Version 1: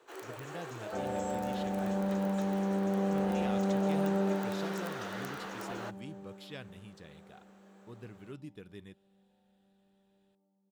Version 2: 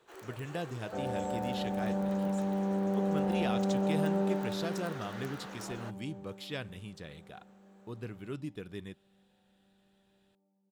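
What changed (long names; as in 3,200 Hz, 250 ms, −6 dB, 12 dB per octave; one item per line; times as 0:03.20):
speech +6.5 dB
first sound −4.5 dB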